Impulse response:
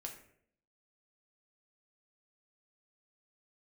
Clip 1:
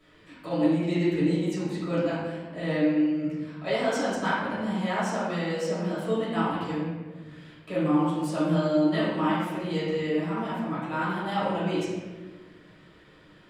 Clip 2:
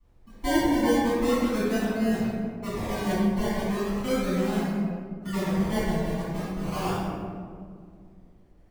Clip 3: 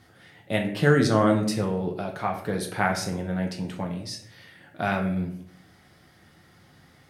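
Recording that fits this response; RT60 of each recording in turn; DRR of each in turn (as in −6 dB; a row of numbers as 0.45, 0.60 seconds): 3; 1.4, 2.1, 0.65 seconds; −12.0, −15.0, 1.0 decibels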